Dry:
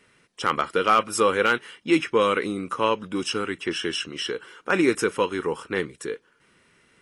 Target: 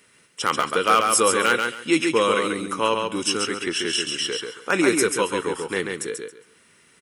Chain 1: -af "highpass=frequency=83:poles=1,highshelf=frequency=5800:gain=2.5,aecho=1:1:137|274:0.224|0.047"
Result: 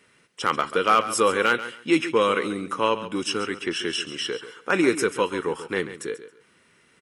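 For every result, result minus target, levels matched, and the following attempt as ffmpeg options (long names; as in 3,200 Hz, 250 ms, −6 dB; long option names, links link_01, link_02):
8,000 Hz band −6.5 dB; echo-to-direct −8.5 dB
-af "highpass=frequency=83:poles=1,highshelf=frequency=5800:gain=14,aecho=1:1:137|274:0.224|0.047"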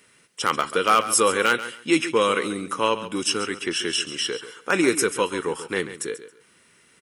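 echo-to-direct −8.5 dB
-af "highpass=frequency=83:poles=1,highshelf=frequency=5800:gain=14,aecho=1:1:137|274|411:0.596|0.125|0.0263"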